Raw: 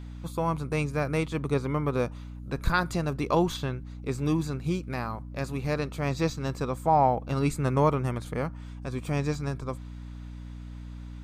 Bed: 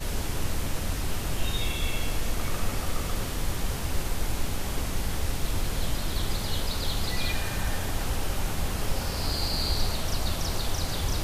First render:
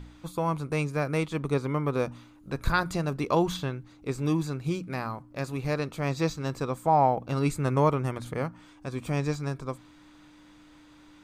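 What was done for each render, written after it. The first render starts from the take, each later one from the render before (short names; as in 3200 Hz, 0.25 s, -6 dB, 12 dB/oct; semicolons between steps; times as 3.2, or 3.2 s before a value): de-hum 60 Hz, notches 4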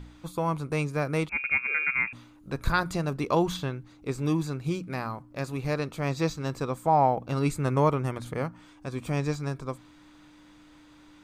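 1.29–2.13 inverted band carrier 2600 Hz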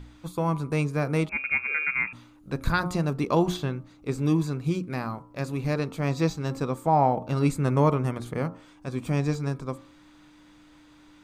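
de-hum 89.85 Hz, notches 15; dynamic EQ 210 Hz, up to +5 dB, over -40 dBFS, Q 0.92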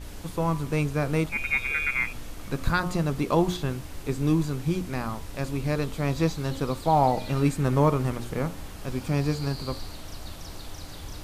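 add bed -11 dB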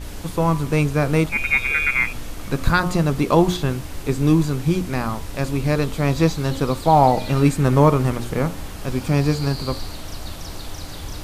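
gain +7 dB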